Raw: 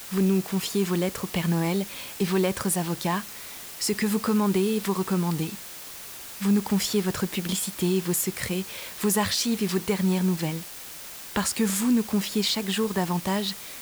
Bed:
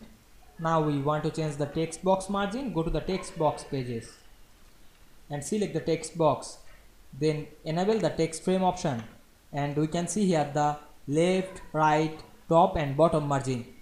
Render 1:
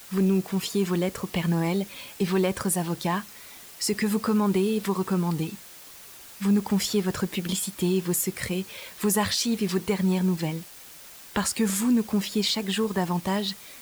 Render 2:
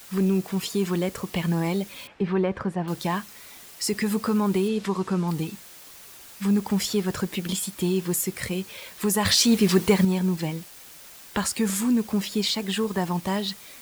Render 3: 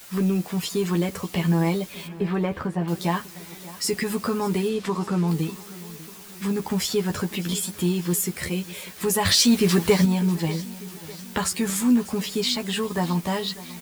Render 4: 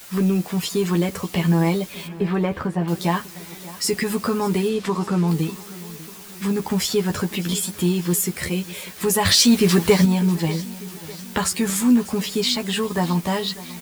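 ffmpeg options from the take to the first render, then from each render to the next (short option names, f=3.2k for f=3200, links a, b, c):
-af "afftdn=nr=6:nf=-40"
-filter_complex "[0:a]asettb=1/sr,asplit=3[a][b][c];[a]atrim=end=2.074[d];[b]atrim=start=2.07:end=2.88,asetpts=PTS-STARTPTS,afade=t=in:d=0.004:c=qsin,afade=t=out:st=0.806:d=0.004:c=qsin,lowpass=2k[e];[c]atrim=start=2.876[f];[d][e]acrossfade=d=0.004:c1=hsin:c2=qsin[g];[g][f]acrossfade=d=0.004:c1=qsin:c2=hsin,asettb=1/sr,asplit=3[h][i][j];[h]atrim=end=4.684[k];[i]atrim=start=4.68:end=5.28,asetpts=PTS-STARTPTS,afade=t=in:d=0.004:c=qsin,afade=t=out:st=0.596:d=0.004:c=qsin,lowpass=7.5k[l];[j]atrim=start=5.276[m];[k][l]acrossfade=d=0.004:c1=hsin:c2=qsin[n];[n][m]acrossfade=d=0.004:c1=qsin:c2=hsin,asettb=1/sr,asplit=3[o][p][q];[o]atrim=end=9.254[r];[p]atrim=start=9.25:end=10.05,asetpts=PTS-STARTPTS,afade=t=in:d=0.004:c=qsin,afade=t=out:st=0.796:d=0.004:c=qsin,acontrast=75[s];[q]atrim=start=10.046[t];[r][s]acrossfade=d=0.004:c1=hsin:c2=qsin[u];[u][t]acrossfade=d=0.004:c1=qsin:c2=hsin"
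-filter_complex "[0:a]asplit=2[a][b];[b]adelay=12,volume=-4.5dB[c];[a][c]amix=inputs=2:normalize=0,aecho=1:1:596|1192|1788|2384:0.126|0.0667|0.0354|0.0187"
-af "volume=3dB"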